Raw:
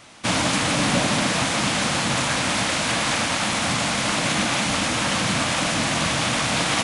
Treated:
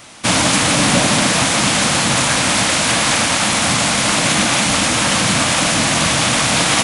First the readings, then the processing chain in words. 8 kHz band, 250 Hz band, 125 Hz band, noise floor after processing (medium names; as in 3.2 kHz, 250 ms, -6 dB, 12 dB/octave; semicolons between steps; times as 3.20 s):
+10.0 dB, +6.0 dB, +6.0 dB, -17 dBFS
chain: treble shelf 8.4 kHz +9.5 dB; trim +6 dB